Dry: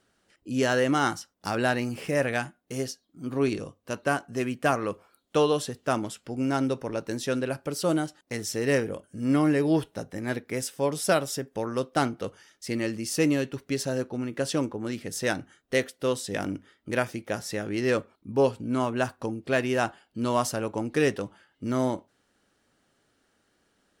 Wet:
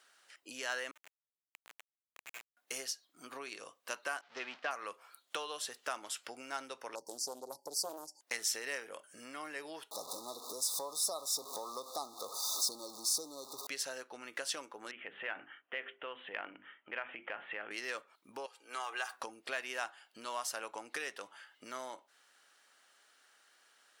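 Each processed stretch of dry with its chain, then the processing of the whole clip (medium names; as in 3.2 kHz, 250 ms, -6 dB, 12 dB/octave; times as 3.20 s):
0.91–2.57 s: comb filter that takes the minimum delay 3.2 ms + band-pass filter 2.5 kHz, Q 15 + Schmitt trigger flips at -36.5 dBFS
4.21–4.71 s: jump at every zero crossing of -31 dBFS + low-pass 4.8 kHz 24 dB/octave + expander -25 dBFS
6.95–8.21 s: brick-wall FIR band-stop 990–4400 Hz + peaking EQ 700 Hz -14 dB 0.29 oct + loudspeaker Doppler distortion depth 0.45 ms
9.91–13.67 s: jump at every zero crossing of -33 dBFS + brick-wall FIR band-stop 1.3–3.5 kHz
14.91–17.71 s: steep low-pass 3.2 kHz 96 dB/octave + hum notches 50/100/150/200/250/300/350/400 Hz + compression 3:1, threshold -36 dBFS
18.46–19.14 s: high-pass 540 Hz + comb 2.5 ms, depth 55% + compression 2.5:1, threshold -39 dBFS
whole clip: compression 10:1, threshold -35 dBFS; high-pass 1 kHz 12 dB/octave; trim +6 dB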